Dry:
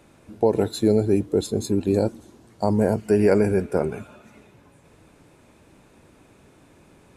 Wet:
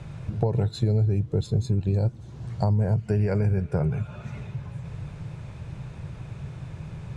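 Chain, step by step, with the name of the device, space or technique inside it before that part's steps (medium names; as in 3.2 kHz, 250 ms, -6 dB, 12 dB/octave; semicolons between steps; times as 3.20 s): jukebox (low-pass 5.8 kHz 12 dB/octave; resonant low shelf 190 Hz +11 dB, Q 3; compression 3:1, threshold -33 dBFS, peak gain reduction 17.5 dB); trim +7 dB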